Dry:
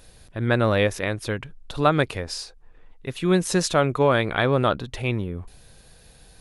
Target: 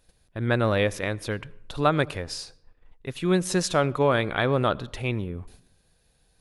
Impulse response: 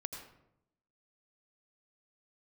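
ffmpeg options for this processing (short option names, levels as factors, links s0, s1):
-filter_complex "[0:a]agate=range=0.251:threshold=0.00562:ratio=16:detection=peak,asplit=2[s0][s1];[1:a]atrim=start_sample=2205[s2];[s1][s2]afir=irnorm=-1:irlink=0,volume=0.158[s3];[s0][s3]amix=inputs=2:normalize=0,volume=0.668"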